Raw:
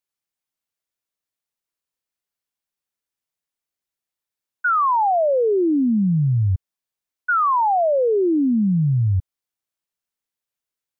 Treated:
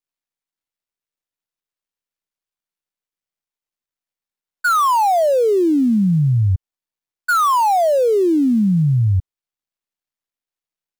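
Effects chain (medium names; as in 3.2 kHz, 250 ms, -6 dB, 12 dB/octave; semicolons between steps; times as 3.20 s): dead-time distortion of 0.057 ms; trim +3 dB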